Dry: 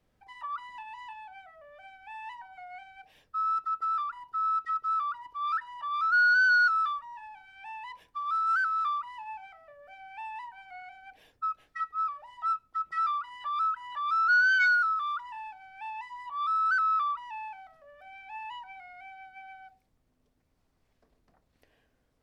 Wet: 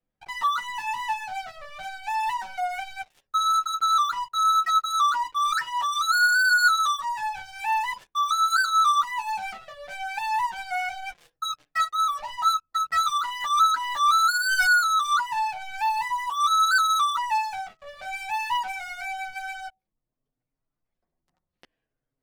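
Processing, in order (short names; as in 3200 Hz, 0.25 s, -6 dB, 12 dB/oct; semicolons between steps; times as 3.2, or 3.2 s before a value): spectral gate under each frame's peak -30 dB strong; sample leveller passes 5; chorus voices 6, 0.18 Hz, delay 10 ms, depth 4.6 ms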